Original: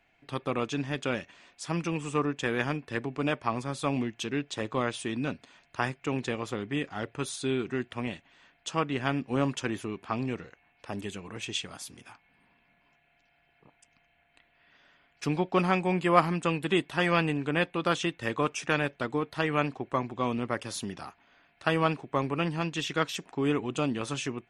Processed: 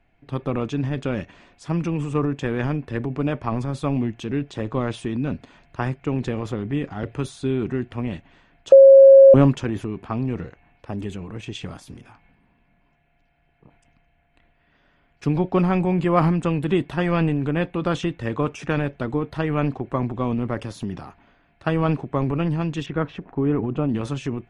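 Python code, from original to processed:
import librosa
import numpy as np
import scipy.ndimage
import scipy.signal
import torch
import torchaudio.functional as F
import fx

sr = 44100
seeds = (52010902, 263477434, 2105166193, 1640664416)

y = fx.band_squash(x, sr, depth_pct=40, at=(7.03, 7.43))
y = fx.lowpass(y, sr, hz=1800.0, slope=12, at=(22.86, 23.89))
y = fx.edit(y, sr, fx.bleep(start_s=8.72, length_s=0.62, hz=543.0, db=-7.5), tone=tone)
y = fx.transient(y, sr, attack_db=2, sustain_db=7)
y = fx.tilt_eq(y, sr, slope=-3.0)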